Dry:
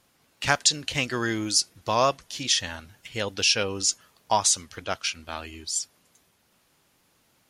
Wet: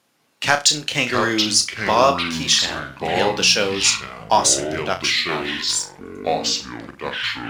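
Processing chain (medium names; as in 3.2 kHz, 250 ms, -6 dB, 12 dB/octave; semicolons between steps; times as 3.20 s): high-pass 160 Hz 12 dB/octave; treble shelf 8.1 kHz -4.5 dB; waveshaping leveller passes 1; flutter echo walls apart 5.7 m, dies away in 0.23 s; ever faster or slower copies 507 ms, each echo -5 st, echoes 3, each echo -6 dB; trim +3 dB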